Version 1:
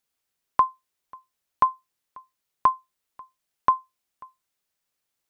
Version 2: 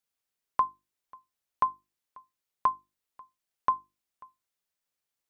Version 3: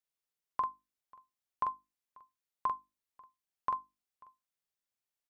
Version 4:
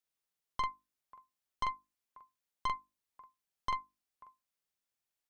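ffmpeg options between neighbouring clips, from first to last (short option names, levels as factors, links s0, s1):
-af "bandreject=f=50:t=h:w=6,bandreject=f=100:t=h:w=6,bandreject=f=150:t=h:w=6,bandreject=f=200:t=h:w=6,bandreject=f=250:t=h:w=6,bandreject=f=300:t=h:w=6,bandreject=f=350:t=h:w=6,volume=0.501"
-filter_complex "[0:a]asplit=2[s0][s1];[s1]adelay=44,volume=0.631[s2];[s0][s2]amix=inputs=2:normalize=0,volume=0.398"
-af "aeval=exprs='(tanh(50.1*val(0)+0.7)-tanh(0.7))/50.1':c=same,volume=1.78"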